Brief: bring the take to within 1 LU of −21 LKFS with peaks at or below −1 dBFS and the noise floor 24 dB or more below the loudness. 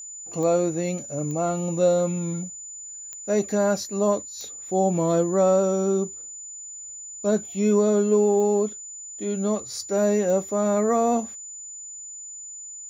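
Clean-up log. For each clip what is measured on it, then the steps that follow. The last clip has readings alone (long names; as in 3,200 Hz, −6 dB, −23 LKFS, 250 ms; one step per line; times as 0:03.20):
number of clicks 6; interfering tone 7,000 Hz; level of the tone −36 dBFS; integrated loudness −23.5 LKFS; sample peak −10.0 dBFS; target loudness −21.0 LKFS
→ click removal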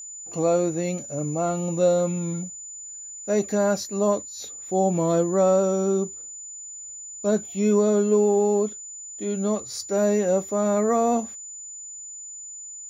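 number of clicks 0; interfering tone 7,000 Hz; level of the tone −36 dBFS
→ notch filter 7,000 Hz, Q 30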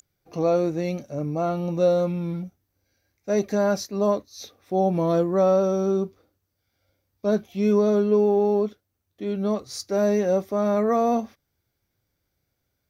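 interfering tone none found; integrated loudness −23.5 LKFS; sample peak −10.5 dBFS; target loudness −21.0 LKFS
→ level +2.5 dB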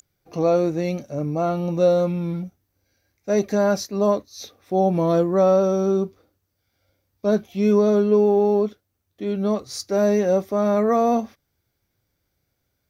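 integrated loudness −21.0 LKFS; sample peak −8.0 dBFS; background noise floor −75 dBFS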